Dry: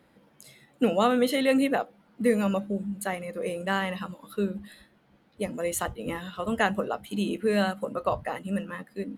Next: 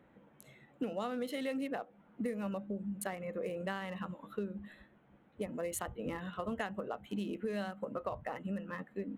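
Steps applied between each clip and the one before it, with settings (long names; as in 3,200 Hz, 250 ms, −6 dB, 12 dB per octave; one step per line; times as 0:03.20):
adaptive Wiener filter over 9 samples
downward compressor 6 to 1, threshold −33 dBFS, peak gain reduction 14.5 dB
level −2 dB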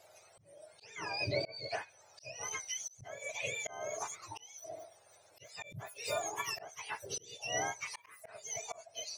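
frequency axis turned over on the octave scale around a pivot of 1,100 Hz
graphic EQ with 15 bands 250 Hz −5 dB, 630 Hz +12 dB, 10,000 Hz +9 dB
volume swells 400 ms
level +4 dB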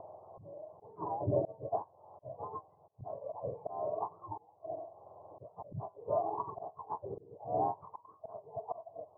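upward compression, threshold −46 dBFS
Chebyshev low-pass with heavy ripple 1,100 Hz, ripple 3 dB
level +7 dB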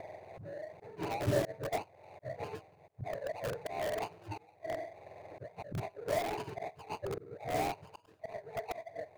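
running median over 41 samples
in parallel at −3.5 dB: wrap-around overflow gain 36 dB
on the sum: level +2 dB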